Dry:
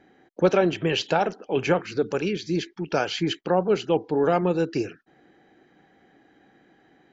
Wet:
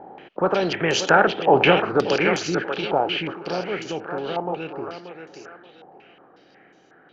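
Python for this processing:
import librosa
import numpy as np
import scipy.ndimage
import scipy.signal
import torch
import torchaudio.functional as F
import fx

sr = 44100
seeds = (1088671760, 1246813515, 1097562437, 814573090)

y = fx.bin_compress(x, sr, power=0.6)
y = fx.doppler_pass(y, sr, speed_mps=6, closest_m=3.6, pass_at_s=1.62)
y = fx.echo_thinned(y, sr, ms=582, feedback_pct=32, hz=310.0, wet_db=-6.0)
y = fx.filter_held_lowpass(y, sr, hz=5.5, low_hz=860.0, high_hz=6500.0)
y = F.gain(torch.from_numpy(y), 1.5).numpy()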